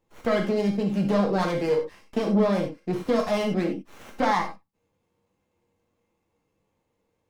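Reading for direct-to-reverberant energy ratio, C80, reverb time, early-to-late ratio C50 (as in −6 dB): 1.0 dB, 12.5 dB, non-exponential decay, 7.5 dB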